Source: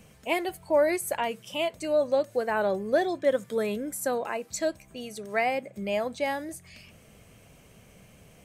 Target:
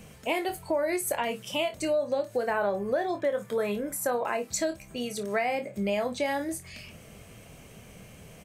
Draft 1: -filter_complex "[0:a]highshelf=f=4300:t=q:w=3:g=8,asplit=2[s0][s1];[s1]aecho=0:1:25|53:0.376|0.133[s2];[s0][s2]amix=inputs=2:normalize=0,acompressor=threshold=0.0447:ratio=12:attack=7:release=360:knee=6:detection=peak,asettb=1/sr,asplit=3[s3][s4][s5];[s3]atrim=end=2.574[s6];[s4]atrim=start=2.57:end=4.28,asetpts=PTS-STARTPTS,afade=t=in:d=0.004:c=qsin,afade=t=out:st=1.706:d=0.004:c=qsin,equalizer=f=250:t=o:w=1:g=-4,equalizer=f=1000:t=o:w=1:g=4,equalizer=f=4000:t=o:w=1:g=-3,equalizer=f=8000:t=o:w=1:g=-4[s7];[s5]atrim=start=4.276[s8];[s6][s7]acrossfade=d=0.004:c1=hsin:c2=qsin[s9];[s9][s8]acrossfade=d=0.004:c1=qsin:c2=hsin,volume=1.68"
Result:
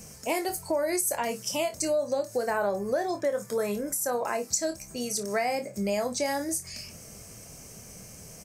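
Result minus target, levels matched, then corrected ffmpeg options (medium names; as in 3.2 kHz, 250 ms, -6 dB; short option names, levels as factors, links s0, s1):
8 kHz band +6.0 dB
-filter_complex "[0:a]asplit=2[s0][s1];[s1]aecho=0:1:25|53:0.376|0.133[s2];[s0][s2]amix=inputs=2:normalize=0,acompressor=threshold=0.0447:ratio=12:attack=7:release=360:knee=6:detection=peak,asettb=1/sr,asplit=3[s3][s4][s5];[s3]atrim=end=2.574[s6];[s4]atrim=start=2.57:end=4.28,asetpts=PTS-STARTPTS,afade=t=in:d=0.004:c=qsin,afade=t=out:st=1.706:d=0.004:c=qsin,equalizer=f=250:t=o:w=1:g=-4,equalizer=f=1000:t=o:w=1:g=4,equalizer=f=4000:t=o:w=1:g=-3,equalizer=f=8000:t=o:w=1:g=-4[s7];[s5]atrim=start=4.276[s8];[s6][s7]acrossfade=d=0.004:c1=hsin:c2=qsin[s9];[s9][s8]acrossfade=d=0.004:c1=qsin:c2=hsin,volume=1.68"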